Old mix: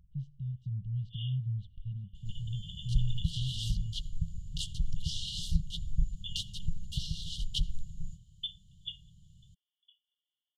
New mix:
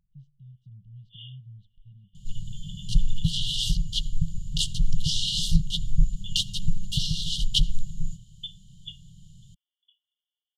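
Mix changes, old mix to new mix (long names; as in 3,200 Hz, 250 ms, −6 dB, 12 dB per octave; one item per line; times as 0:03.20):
speech −8.0 dB
second sound +11.5 dB
master: add parametric band 65 Hz −14 dB 0.85 octaves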